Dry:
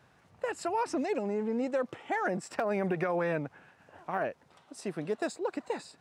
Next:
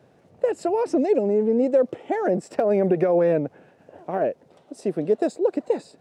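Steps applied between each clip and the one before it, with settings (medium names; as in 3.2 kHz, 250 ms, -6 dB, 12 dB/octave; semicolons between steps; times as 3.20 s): high-pass 200 Hz 6 dB/octave; resonant low shelf 770 Hz +11 dB, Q 1.5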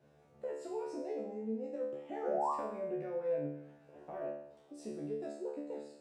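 compression 2:1, threshold -35 dBFS, peak gain reduction 11.5 dB; painted sound rise, 2.23–2.52 s, 450–1200 Hz -24 dBFS; feedback comb 73 Hz, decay 0.7 s, harmonics all, mix 100%; trim +3 dB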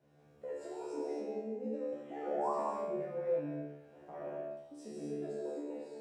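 gated-style reverb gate 290 ms flat, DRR -3 dB; trim -4.5 dB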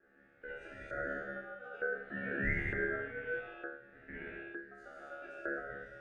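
gated-style reverb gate 460 ms falling, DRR 12 dB; LFO band-pass saw up 1.1 Hz 650–1600 Hz; ring modulator 1 kHz; trim +11 dB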